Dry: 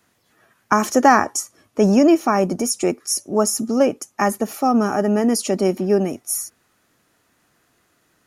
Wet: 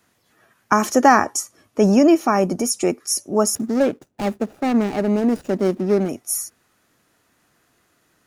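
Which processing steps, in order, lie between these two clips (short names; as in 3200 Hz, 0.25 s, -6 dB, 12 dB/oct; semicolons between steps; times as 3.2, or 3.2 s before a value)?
3.55–6.09 median filter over 41 samples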